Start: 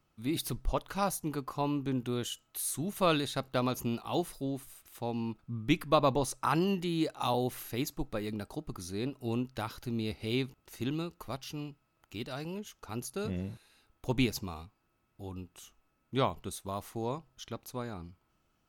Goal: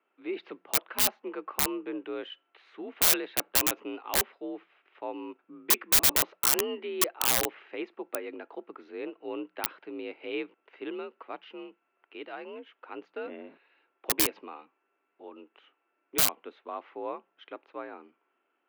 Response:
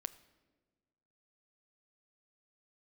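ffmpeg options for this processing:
-af "highpass=f=260:t=q:w=0.5412,highpass=f=260:t=q:w=1.307,lowpass=f=2.6k:t=q:w=0.5176,lowpass=f=2.6k:t=q:w=0.7071,lowpass=f=2.6k:t=q:w=1.932,afreqshift=53,aeval=exprs='(mod(16.8*val(0)+1,2)-1)/16.8':c=same,aemphasis=mode=production:type=75kf"

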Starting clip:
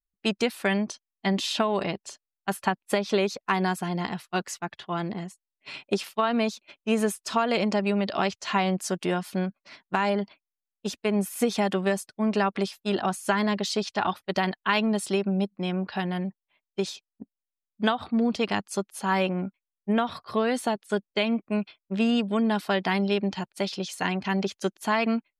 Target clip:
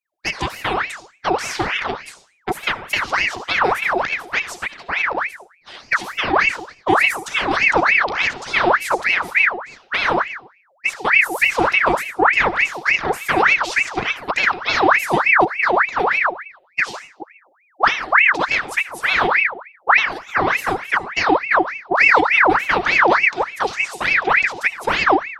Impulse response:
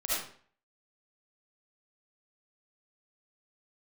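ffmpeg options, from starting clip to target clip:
-filter_complex "[0:a]asplit=2[a][b];[b]asetrate=37084,aresample=44100,atempo=1.18921,volume=-7dB[c];[a][c]amix=inputs=2:normalize=0,asubboost=boost=6:cutoff=220,asplit=2[d][e];[1:a]atrim=start_sample=2205[f];[e][f]afir=irnorm=-1:irlink=0,volume=-14dB[g];[d][g]amix=inputs=2:normalize=0,aeval=exprs='val(0)*sin(2*PI*1500*n/s+1500*0.65/3.4*sin(2*PI*3.4*n/s))':c=same,volume=2.5dB"

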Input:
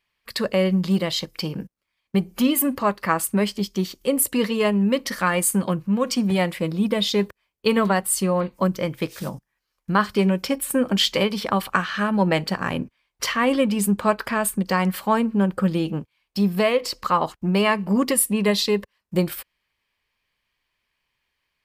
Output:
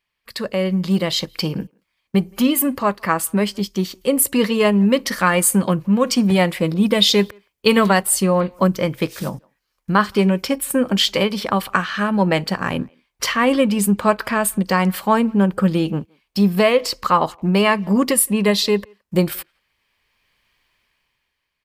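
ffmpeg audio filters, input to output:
-filter_complex "[0:a]dynaudnorm=f=150:g=13:m=14.5dB,asplit=2[a][b];[b]adelay=170,highpass=300,lowpass=3.4k,asoftclip=type=hard:threshold=-10dB,volume=-29dB[c];[a][c]amix=inputs=2:normalize=0,asettb=1/sr,asplit=3[d][e][f];[d]atrim=end=6.744[g];[e]atrim=start=6.74:end=8.03,asetpts=PTS-STARTPTS,afade=t=in:d=0.004:c=qsin,afade=t=out:st=1.286:d=0.004:c=qsin,adynamicequalizer=threshold=0.0447:dfrequency=1900:dqfactor=0.7:tfrequency=1900:tqfactor=0.7:attack=5:release=100:ratio=0.375:range=2.5:mode=boostabove:tftype=highshelf[h];[f]atrim=start=8.026[i];[g][h]acrossfade=d=0.004:c1=hsin:c2=qsin[j];[j][i]acrossfade=d=0.004:c1=qsin:c2=hsin,volume=-2dB"

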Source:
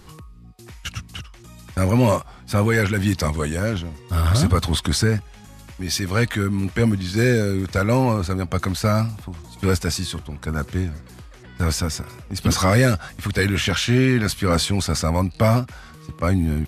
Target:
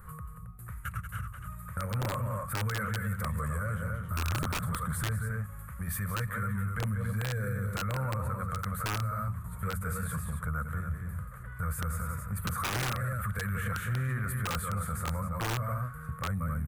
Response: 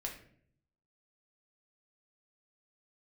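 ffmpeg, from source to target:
-filter_complex "[0:a]firequalizer=gain_entry='entry(140,0);entry(200,-5);entry(300,-29);entry(490,-5);entry(810,-15);entry(1200,6);entry(2800,-21);entry(5200,-29);entry(9000,-18);entry(13000,-15)':delay=0.05:min_phase=1,aecho=1:1:183.7|271.1:0.355|0.316,acrossover=split=4900[a][b];[a]aeval=exprs='(mod(3.76*val(0)+1,2)-1)/3.76':c=same[c];[b]aexciter=amount=6.6:drive=5.4:freq=7.4k[d];[c][d]amix=inputs=2:normalize=0,acompressor=threshold=-30dB:ratio=2.5,bandreject=f=46.36:t=h:w=4,bandreject=f=92.72:t=h:w=4,bandreject=f=139.08:t=h:w=4,bandreject=f=185.44:t=h:w=4,bandreject=f=231.8:t=h:w=4,alimiter=level_in=1dB:limit=-24dB:level=0:latency=1:release=11,volume=-1dB"

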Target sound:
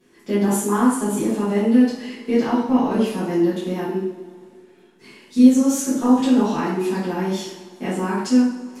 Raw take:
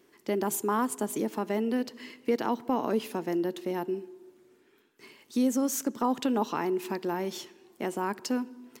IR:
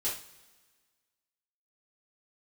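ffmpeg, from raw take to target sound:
-filter_complex "[0:a]lowshelf=f=180:g=10.5[a];[1:a]atrim=start_sample=2205,asetrate=25137,aresample=44100[b];[a][b]afir=irnorm=-1:irlink=0,volume=-2.5dB"

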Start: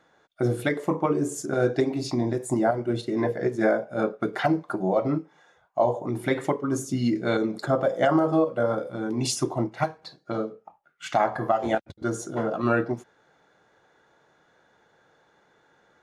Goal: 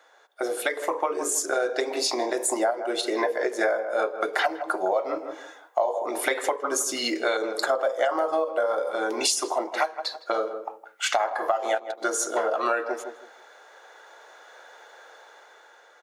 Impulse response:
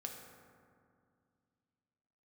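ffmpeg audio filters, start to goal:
-filter_complex "[0:a]highshelf=f=5.2k:g=5,asplit=2[a][b];[b]adelay=160,lowpass=f=1.3k:p=1,volume=-13dB,asplit=2[c][d];[d]adelay=160,lowpass=f=1.3k:p=1,volume=0.25,asplit=2[e][f];[f]adelay=160,lowpass=f=1.3k:p=1,volume=0.25[g];[a][c][e][g]amix=inputs=4:normalize=0,dynaudnorm=f=280:g=9:m=9dB,highpass=f=480:w=0.5412,highpass=f=480:w=1.3066,acompressor=threshold=-28dB:ratio=5,volume=5.5dB"

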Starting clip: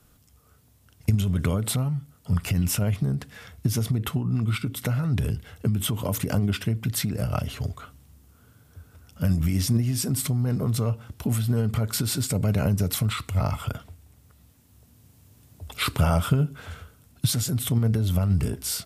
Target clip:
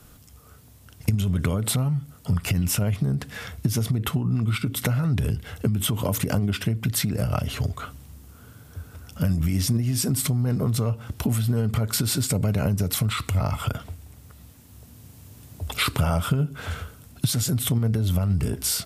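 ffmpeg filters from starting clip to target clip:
-af "acompressor=threshold=-32dB:ratio=2.5,volume=8.5dB"

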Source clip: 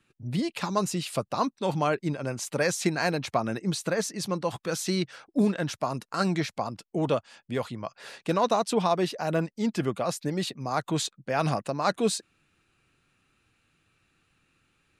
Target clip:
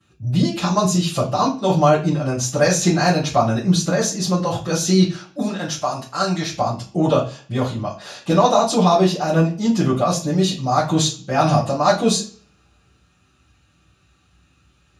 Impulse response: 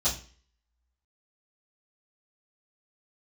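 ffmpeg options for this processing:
-filter_complex "[0:a]asettb=1/sr,asplit=3[a][b][c];[a]atrim=end=5.124[d];[b]atrim=start=5.12:end=6.5,asetpts=PTS-STARTPTS,afade=t=in:d=0.004:c=qsin,afade=t=out:st=1.376:d=0.004:c=qsin,lowshelf=f=450:g=-10.5[e];[c]atrim=start=6.496[f];[d][e]acrossfade=d=0.004:c1=hsin:c2=qsin[g];[g][f]acrossfade=d=0.004:c1=qsin:c2=hsin[h];[1:a]atrim=start_sample=2205[i];[h][i]afir=irnorm=-1:irlink=0,volume=-1dB"

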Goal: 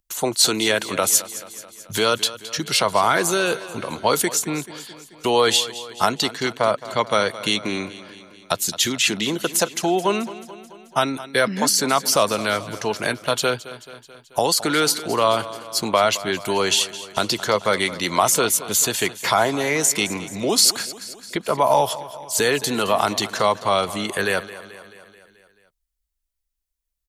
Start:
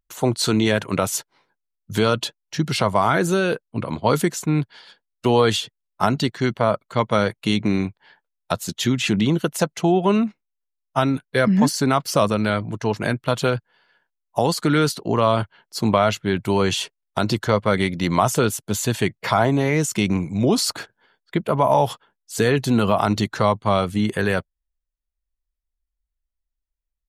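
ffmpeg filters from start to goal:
-filter_complex "[0:a]highshelf=f=3.3k:g=10.5,acrossover=split=300|5900[a][b][c];[a]acompressor=threshold=-35dB:ratio=6[d];[d][b][c]amix=inputs=3:normalize=0,aecho=1:1:217|434|651|868|1085|1302:0.158|0.0951|0.0571|0.0342|0.0205|0.0123"

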